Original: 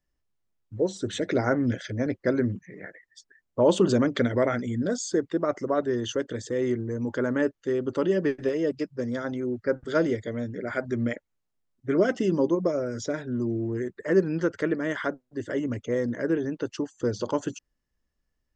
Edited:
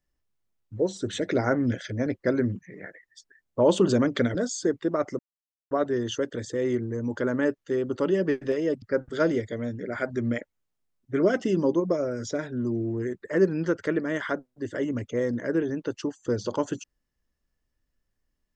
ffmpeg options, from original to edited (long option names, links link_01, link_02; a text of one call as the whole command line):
ffmpeg -i in.wav -filter_complex "[0:a]asplit=4[link_01][link_02][link_03][link_04];[link_01]atrim=end=4.352[link_05];[link_02]atrim=start=4.838:end=5.68,asetpts=PTS-STARTPTS,afade=type=out:start_time=0.838:duration=0.004:curve=hsin,apad=pad_dur=0.52[link_06];[link_03]atrim=start=5.68:end=8.792,asetpts=PTS-STARTPTS,afade=type=in:duration=0.004:curve=hsin[link_07];[link_04]atrim=start=9.568[link_08];[link_06][link_07]concat=n=2:v=0:a=1[link_09];[link_05][link_09]acrossfade=duration=0.004:curve1=hsin:curve2=hsin[link_10];[link_10][link_08]acrossfade=duration=0.004:curve1=hsin:curve2=hsin" out.wav